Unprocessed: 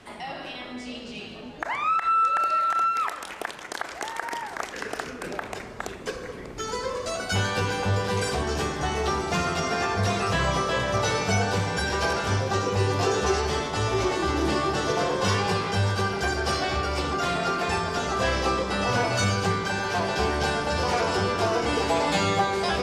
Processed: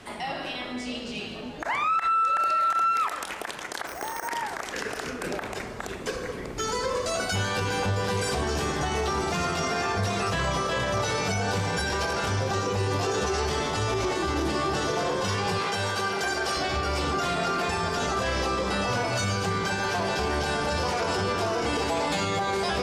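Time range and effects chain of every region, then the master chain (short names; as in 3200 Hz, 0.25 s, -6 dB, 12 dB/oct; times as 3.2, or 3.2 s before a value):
3.87–4.28 high shelf 2700 Hz -11.5 dB + careless resampling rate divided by 6×, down none, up hold
15.59–16.57 HPF 400 Hz 6 dB/oct + notch 5000 Hz, Q 22
whole clip: high shelf 7800 Hz +4 dB; limiter -21.5 dBFS; gain +3 dB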